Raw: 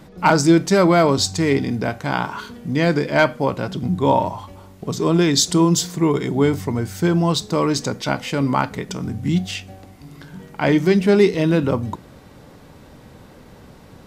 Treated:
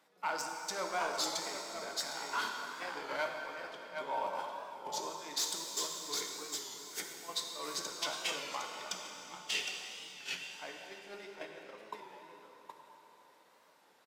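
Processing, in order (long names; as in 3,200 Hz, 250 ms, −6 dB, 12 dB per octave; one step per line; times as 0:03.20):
stylus tracing distortion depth 0.021 ms
downward compressor 6 to 1, threshold −26 dBFS, peak gain reduction 16 dB
on a send: single-tap delay 760 ms −5 dB
on the sum: brickwall limiter −22.5 dBFS, peak gain reduction 11 dB
high-pass filter 700 Hz 12 dB per octave
in parallel at −9 dB: hard clipping −37.5 dBFS, distortion −8 dB
on the sum: noise gate −35 dBFS, range −19 dB
dense smooth reverb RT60 3.5 s, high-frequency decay 0.9×, DRR 1.5 dB
wow of a warped record 33 1/3 rpm, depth 100 cents
level −1.5 dB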